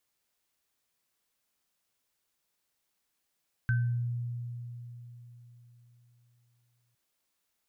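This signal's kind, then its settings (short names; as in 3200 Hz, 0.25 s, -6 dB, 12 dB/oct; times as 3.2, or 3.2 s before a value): sine partials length 3.26 s, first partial 120 Hz, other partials 1540 Hz, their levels -6 dB, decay 3.91 s, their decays 0.43 s, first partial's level -23.5 dB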